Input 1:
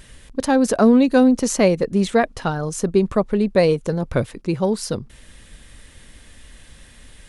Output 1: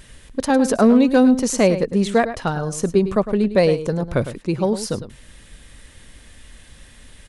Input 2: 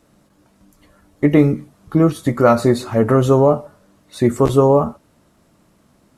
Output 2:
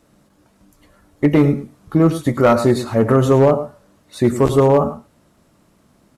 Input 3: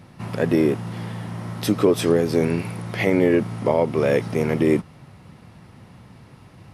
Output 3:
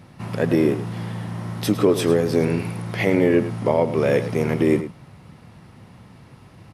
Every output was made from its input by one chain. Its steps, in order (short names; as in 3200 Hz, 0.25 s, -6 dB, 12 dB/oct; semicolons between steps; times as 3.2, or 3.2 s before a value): outdoor echo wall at 18 m, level -12 dB; hard clip -5.5 dBFS